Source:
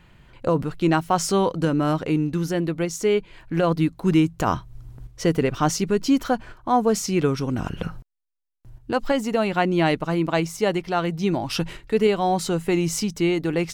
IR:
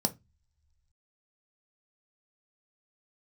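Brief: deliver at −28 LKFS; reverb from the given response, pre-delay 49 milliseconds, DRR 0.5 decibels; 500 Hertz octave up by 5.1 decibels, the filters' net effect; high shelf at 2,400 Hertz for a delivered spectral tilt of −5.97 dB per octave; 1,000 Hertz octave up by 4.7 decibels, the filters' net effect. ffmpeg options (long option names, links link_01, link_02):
-filter_complex "[0:a]equalizer=frequency=500:width_type=o:gain=5.5,equalizer=frequency=1000:width_type=o:gain=3,highshelf=frequency=2400:gain=6.5,asplit=2[link_01][link_02];[1:a]atrim=start_sample=2205,adelay=49[link_03];[link_02][link_03]afir=irnorm=-1:irlink=0,volume=-6dB[link_04];[link_01][link_04]amix=inputs=2:normalize=0,volume=-14.5dB"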